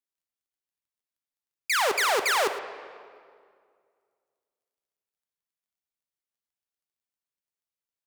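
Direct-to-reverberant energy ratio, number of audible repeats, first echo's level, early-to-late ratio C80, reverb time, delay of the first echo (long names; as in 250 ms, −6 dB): 8.0 dB, 1, −15.0 dB, 10.0 dB, 2.1 s, 113 ms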